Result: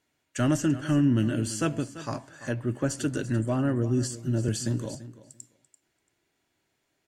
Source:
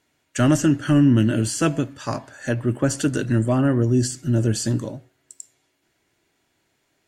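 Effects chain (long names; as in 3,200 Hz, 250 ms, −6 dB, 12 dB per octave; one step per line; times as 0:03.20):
on a send: repeating echo 339 ms, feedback 15%, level −15 dB
0:04.48–0:04.95: on the sum: multiband upward and downward compressor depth 70%
level −7 dB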